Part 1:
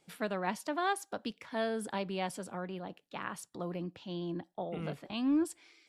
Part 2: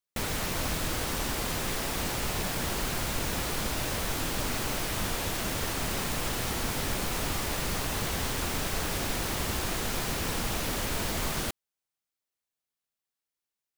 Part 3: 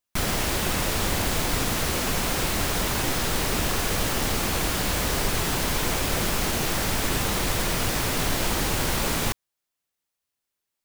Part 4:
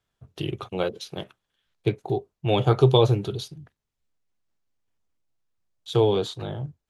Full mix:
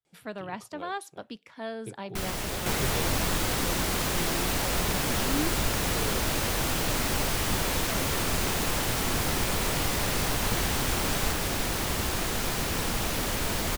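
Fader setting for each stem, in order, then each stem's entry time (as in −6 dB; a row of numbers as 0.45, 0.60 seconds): −2.5, +2.0, −7.5, −18.5 decibels; 0.05, 2.50, 2.00, 0.00 seconds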